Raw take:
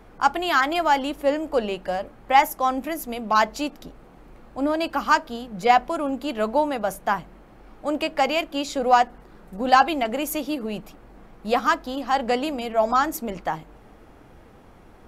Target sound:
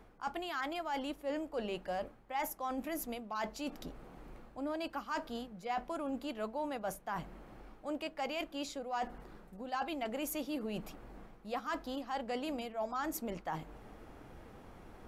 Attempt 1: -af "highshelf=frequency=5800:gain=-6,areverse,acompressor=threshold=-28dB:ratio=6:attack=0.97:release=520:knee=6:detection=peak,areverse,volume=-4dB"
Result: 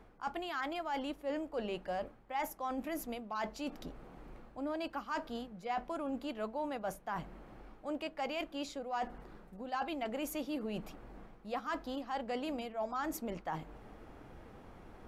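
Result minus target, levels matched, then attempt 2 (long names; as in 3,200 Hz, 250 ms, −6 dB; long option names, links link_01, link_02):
8,000 Hz band −3.0 dB
-af "areverse,acompressor=threshold=-28dB:ratio=6:attack=0.97:release=520:knee=6:detection=peak,areverse,volume=-4dB"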